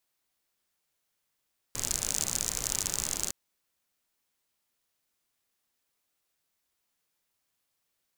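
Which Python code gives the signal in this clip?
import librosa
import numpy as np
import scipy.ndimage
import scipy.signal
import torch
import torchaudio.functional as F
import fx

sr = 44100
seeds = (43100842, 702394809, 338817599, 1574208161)

y = fx.rain(sr, seeds[0], length_s=1.56, drops_per_s=56.0, hz=6900.0, bed_db=-7.5)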